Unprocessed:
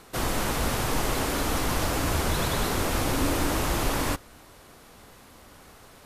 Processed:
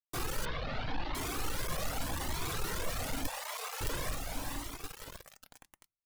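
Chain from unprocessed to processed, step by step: diffused feedback echo 0.456 s, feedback 43%, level -11.5 dB; hum 50 Hz, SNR 31 dB; companded quantiser 2-bit; 3.27–3.81 Chebyshev high-pass 440 Hz, order 10; reverb RT60 0.25 s, pre-delay 4 ms, DRR 14 dB; reverb removal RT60 0.56 s; 0.45–1.15 steep low-pass 4300 Hz 36 dB/oct; cascading flanger rising 0.86 Hz; gain -5.5 dB

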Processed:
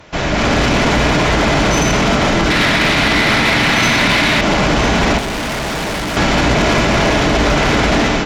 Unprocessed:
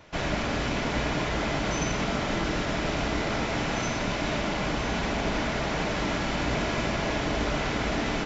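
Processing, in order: 2.5–4.41 graphic EQ 125/250/1000/2000/4000 Hz +4/+5/+4/+10/+10 dB; AGC gain up to 11.5 dB; limiter -12.5 dBFS, peak gain reduction 11 dB; 5.18–6.17 hard clip -29.5 dBFS, distortion -11 dB; added harmonics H 5 -21 dB, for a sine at -12.5 dBFS; gain +7.5 dB

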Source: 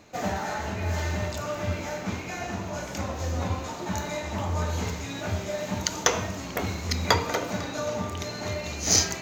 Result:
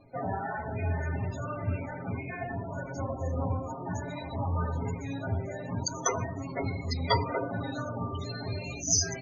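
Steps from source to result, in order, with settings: loudest bins only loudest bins 32; low shelf 83 Hz +10.5 dB; notches 50/100/150/200/250/300/350/400/450 Hz; comb 7.4 ms, depth 97%; gain -4.5 dB

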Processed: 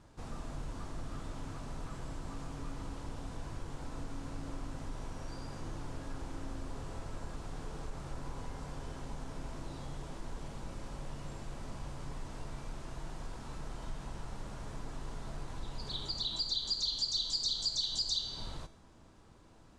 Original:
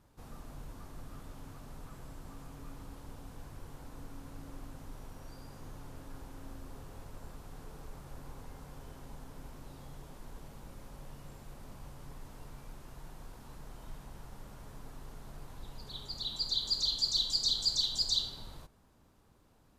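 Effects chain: LPF 8800 Hz 24 dB/oct; resonator 330 Hz, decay 0.7 s, mix 70%; compressor 3:1, threshold -50 dBFS, peak gain reduction 11.5 dB; gain +16 dB

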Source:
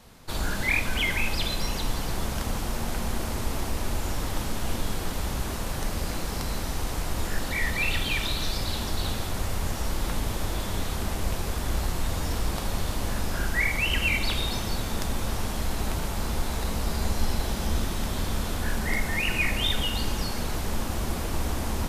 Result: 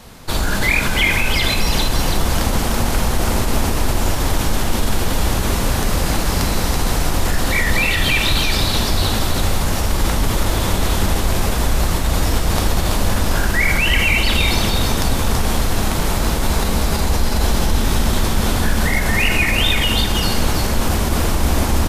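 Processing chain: in parallel at 0 dB: negative-ratio compressor -28 dBFS; on the sum: echo 0.331 s -4.5 dB; gain +4.5 dB

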